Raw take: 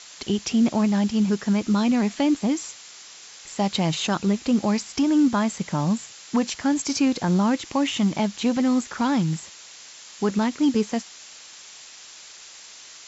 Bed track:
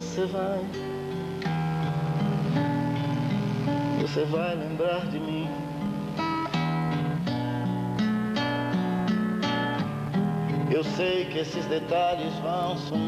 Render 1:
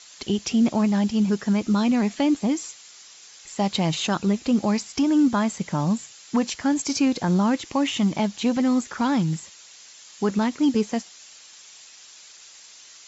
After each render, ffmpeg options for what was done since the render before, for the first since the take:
-af "afftdn=nr=6:nf=-45"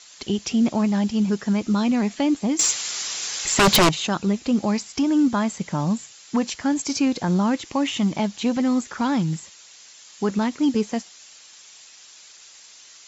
-filter_complex "[0:a]asettb=1/sr,asplit=3[s0][s1][s2];[s0]atrim=end=2.594[s3];[s1]atrim=start=2.59:end=3.89,asetpts=PTS-STARTPTS,afade=t=in:d=0.004:c=qsin,afade=t=out:st=1.296:d=0.004:c=qsin,aeval=exprs='0.282*sin(PI/2*5.01*val(0)/0.282)':c=same[s4];[s2]atrim=start=3.886[s5];[s3][s4]acrossfade=d=0.004:c1=hsin:c2=qsin[s6];[s6][s5]acrossfade=d=0.004:c1=qsin:c2=hsin"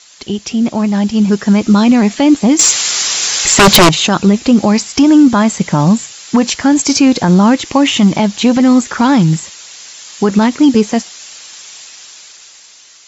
-af "dynaudnorm=f=280:g=9:m=3.76,alimiter=level_in=1.78:limit=0.891:release=50:level=0:latency=1"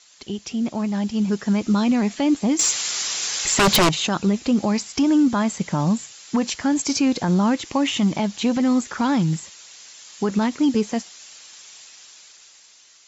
-af "volume=0.299"

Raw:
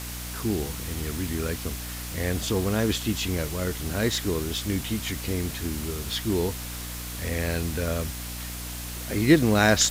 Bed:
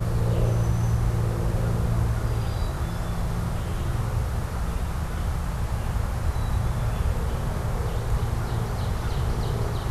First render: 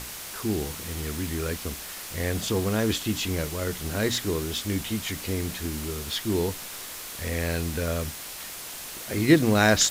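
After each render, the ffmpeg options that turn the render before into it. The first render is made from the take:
-af "bandreject=f=60:t=h:w=6,bandreject=f=120:t=h:w=6,bandreject=f=180:t=h:w=6,bandreject=f=240:t=h:w=6,bandreject=f=300:t=h:w=6"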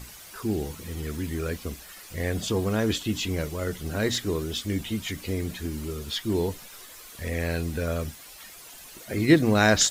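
-af "afftdn=nr=11:nf=-39"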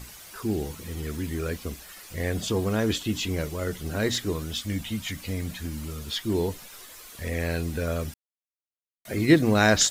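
-filter_complex "[0:a]asettb=1/sr,asplit=3[s0][s1][s2];[s0]atrim=end=4.324[s3];[s1]atrim=start=4.32:end=6.05,asetpts=PTS-STARTPTS,afade=t=in:d=0.004:c=qsin,afade=t=out:st=1.726:d=0.004:c=qsin,equalizer=f=380:w=3.3:g=-12[s4];[s2]atrim=start=6.046[s5];[s3][s4]acrossfade=d=0.004:c1=hsin:c2=qsin[s6];[s6][s5]acrossfade=d=0.004:c1=qsin:c2=hsin,asplit=3[s7][s8][s9];[s7]atrim=end=8.14,asetpts=PTS-STARTPTS,afade=t=out:st=8.136:d=0.004:c=hsin[s10];[s8]atrim=start=8.14:end=9.05,asetpts=PTS-STARTPTS,volume=0[s11];[s9]atrim=start=9.05,asetpts=PTS-STARTPTS,afade=t=in:d=0.004:c=hsin[s12];[s10][s11][s12]concat=n=3:v=0:a=1"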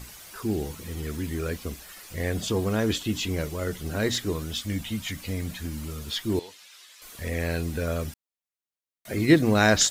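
-filter_complex "[0:a]asettb=1/sr,asplit=3[s0][s1][s2];[s0]atrim=end=6.394[s3];[s1]atrim=start=6.39:end=7.02,asetpts=PTS-STARTPTS,afade=t=in:d=0.004:c=qsin,afade=t=out:st=0.626:d=0.004:c=qsin,bandpass=f=3500:t=q:w=0.89[s4];[s2]atrim=start=7.016[s5];[s3][s4]acrossfade=d=0.004:c1=hsin:c2=qsin[s6];[s6][s5]acrossfade=d=0.004:c1=qsin:c2=hsin"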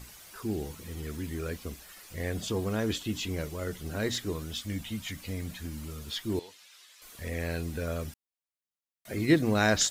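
-af "volume=0.562"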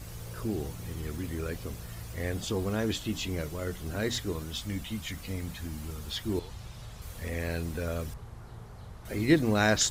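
-filter_complex "[1:a]volume=0.112[s0];[0:a][s0]amix=inputs=2:normalize=0"

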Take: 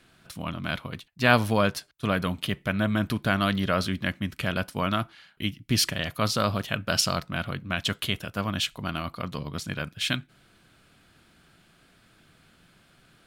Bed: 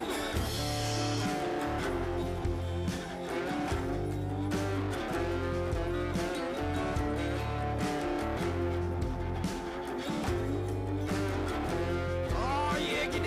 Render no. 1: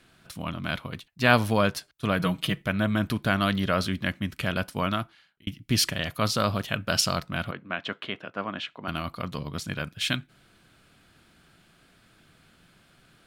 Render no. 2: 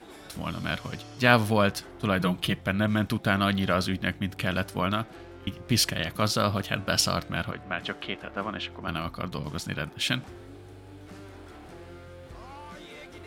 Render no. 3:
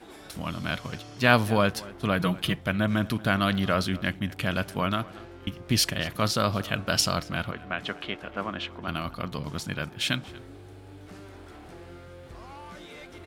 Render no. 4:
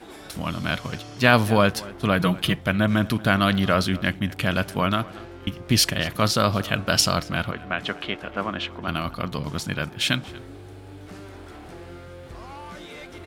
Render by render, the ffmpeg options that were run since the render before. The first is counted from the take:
-filter_complex "[0:a]asettb=1/sr,asplit=3[s0][s1][s2];[s0]atrim=end=2.194[s3];[s1]atrim=start=2.19:end=2.62,asetpts=PTS-STARTPTS,afade=t=in:d=0.004:c=qsin,afade=t=out:st=0.426:d=0.004:c=qsin,aecho=1:1:6.2:0.74,atrim=end_sample=18963[s4];[s2]atrim=start=2.616[s5];[s3][s4]acrossfade=d=0.004:c1=hsin:c2=qsin[s6];[s6][s5]acrossfade=d=0.004:c1=qsin:c2=hsin,asettb=1/sr,asplit=3[s7][s8][s9];[s7]atrim=end=7.514[s10];[s8]atrim=start=7.51:end=8.88,asetpts=PTS-STARTPTS,afade=t=in:d=0.004:c=qsin,afade=t=out:st=1.366:d=0.004:c=qsin,highpass=270,lowpass=2200[s11];[s9]atrim=start=8.876[s12];[s10][s11]acrossfade=d=0.004:c1=hsin:c2=qsin[s13];[s13][s12]acrossfade=d=0.004:c1=qsin:c2=hsin,asplit=2[s14][s15];[s14]atrim=end=5.47,asetpts=PTS-STARTPTS,afade=t=out:st=4.85:d=0.62[s16];[s15]atrim=start=5.47,asetpts=PTS-STARTPTS,afade=t=in:d=0.004:c=hsin[s17];[s16][s17]concat=n=2:v=0:a=1"
-filter_complex "[1:a]volume=0.211[s0];[0:a][s0]amix=inputs=2:normalize=0"
-filter_complex "[0:a]asplit=2[s0][s1];[s1]adelay=233.2,volume=0.1,highshelf=f=4000:g=-5.25[s2];[s0][s2]amix=inputs=2:normalize=0"
-af "volume=1.68,alimiter=limit=0.794:level=0:latency=1"

